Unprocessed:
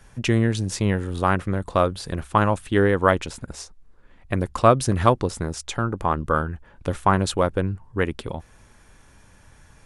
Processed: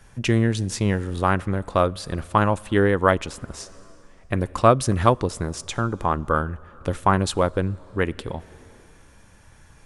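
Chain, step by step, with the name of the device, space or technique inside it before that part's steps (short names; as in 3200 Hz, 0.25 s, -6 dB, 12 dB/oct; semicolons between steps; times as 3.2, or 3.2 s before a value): compressed reverb return (on a send at -12 dB: reverb RT60 2.0 s, pre-delay 3 ms + compressor 10:1, threshold -30 dBFS, peak gain reduction 18 dB)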